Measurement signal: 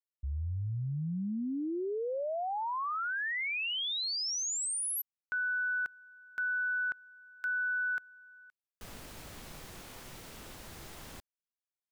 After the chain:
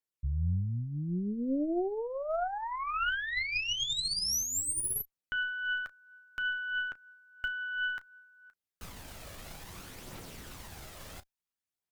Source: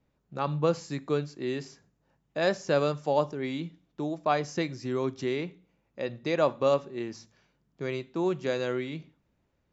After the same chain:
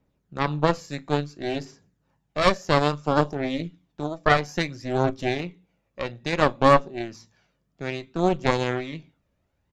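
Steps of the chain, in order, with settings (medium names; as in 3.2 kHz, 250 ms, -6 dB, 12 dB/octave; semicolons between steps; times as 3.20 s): early reflections 11 ms -13.5 dB, 34 ms -16 dB; phaser 0.59 Hz, delay 1.8 ms, feedback 37%; Chebyshev shaper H 6 -7 dB, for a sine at -5 dBFS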